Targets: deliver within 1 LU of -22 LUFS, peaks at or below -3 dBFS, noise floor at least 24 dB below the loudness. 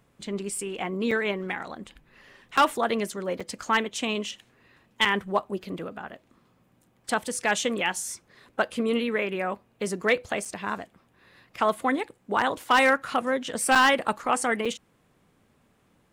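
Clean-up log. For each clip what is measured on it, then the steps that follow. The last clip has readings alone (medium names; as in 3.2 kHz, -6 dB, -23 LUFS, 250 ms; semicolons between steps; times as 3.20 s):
clipped samples 0.2%; clipping level -13.0 dBFS; dropouts 7; longest dropout 5.3 ms; loudness -26.5 LUFS; peak level -13.0 dBFS; loudness target -22.0 LUFS
-> clip repair -13 dBFS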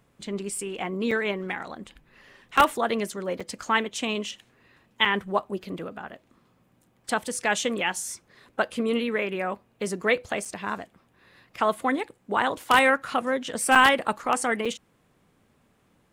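clipped samples 0.0%; dropouts 7; longest dropout 5.3 ms
-> interpolate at 1.11/2.57/3.40/5.05/10.45/13.75/14.65 s, 5.3 ms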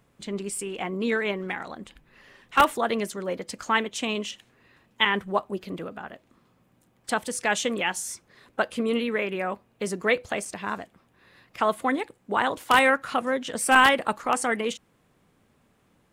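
dropouts 0; loudness -26.0 LUFS; peak level -4.0 dBFS; loudness target -22.0 LUFS
-> trim +4 dB; peak limiter -3 dBFS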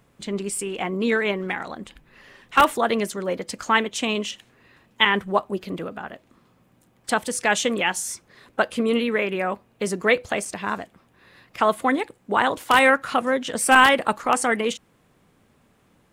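loudness -22.5 LUFS; peak level -3.0 dBFS; noise floor -61 dBFS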